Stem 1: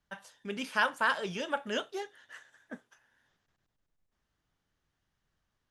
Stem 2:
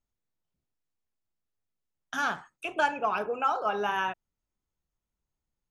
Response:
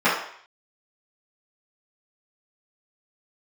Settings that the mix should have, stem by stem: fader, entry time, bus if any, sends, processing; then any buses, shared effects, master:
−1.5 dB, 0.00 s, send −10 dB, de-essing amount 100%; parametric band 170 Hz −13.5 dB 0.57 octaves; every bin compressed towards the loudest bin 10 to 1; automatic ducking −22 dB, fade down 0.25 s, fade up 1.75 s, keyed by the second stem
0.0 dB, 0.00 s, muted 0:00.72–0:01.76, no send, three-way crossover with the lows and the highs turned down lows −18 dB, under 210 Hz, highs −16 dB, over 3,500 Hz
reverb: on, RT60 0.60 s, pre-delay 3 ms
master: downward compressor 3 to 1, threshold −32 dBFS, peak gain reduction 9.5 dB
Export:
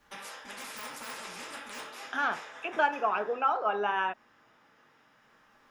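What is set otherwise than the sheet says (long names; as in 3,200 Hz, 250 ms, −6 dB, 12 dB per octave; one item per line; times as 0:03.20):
stem 1 −1.5 dB → −10.5 dB
master: missing downward compressor 3 to 1, threshold −32 dBFS, peak gain reduction 9.5 dB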